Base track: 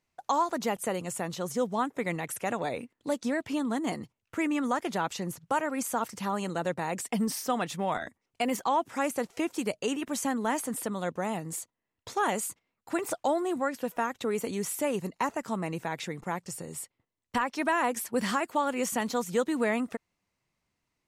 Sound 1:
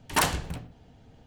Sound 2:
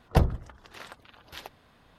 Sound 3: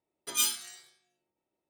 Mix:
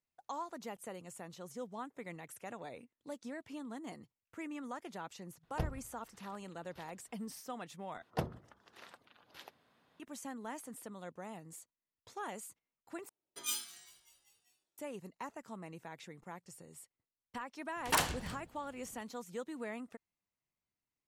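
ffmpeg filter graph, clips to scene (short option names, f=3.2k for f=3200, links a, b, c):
-filter_complex "[2:a]asplit=2[a][b];[0:a]volume=-15dB[c];[b]highpass=160[d];[3:a]asplit=6[e][f][g][h][i][j];[f]adelay=197,afreqshift=-100,volume=-22dB[k];[g]adelay=394,afreqshift=-200,volume=-26dB[l];[h]adelay=591,afreqshift=-300,volume=-30dB[m];[i]adelay=788,afreqshift=-400,volume=-34dB[n];[j]adelay=985,afreqshift=-500,volume=-38.1dB[o];[e][k][l][m][n][o]amix=inputs=6:normalize=0[p];[1:a]lowshelf=f=320:g=-4.5[q];[c]asplit=3[r][s][t];[r]atrim=end=8.024[u];[d]atrim=end=1.98,asetpts=PTS-STARTPTS,volume=-10.5dB[v];[s]atrim=start=9.996:end=13.094[w];[p]atrim=end=1.69,asetpts=PTS-STARTPTS,volume=-10dB[x];[t]atrim=start=14.776[y];[a]atrim=end=1.98,asetpts=PTS-STARTPTS,volume=-15.5dB,afade=t=in:d=0.004:c=hsin,afade=t=out:st=1.976:d=0.004:c=hsin,adelay=5430[z];[q]atrim=end=1.26,asetpts=PTS-STARTPTS,volume=-6dB,afade=t=in:d=0.004:c=hsin,afade=t=out:st=1.256:d=0.004:c=hsin,adelay=17760[aa];[u][v]acrossfade=d=0.004:c1=hsin:c2=hsin[ab];[ab][w]acrossfade=d=0.004:c1=hsin:c2=hsin[ac];[ac][x]acrossfade=d=0.004:c1=hsin:c2=hsin[ad];[ad][y]acrossfade=d=0.004:c1=hsin:c2=hsin[ae];[ae][z][aa]amix=inputs=3:normalize=0"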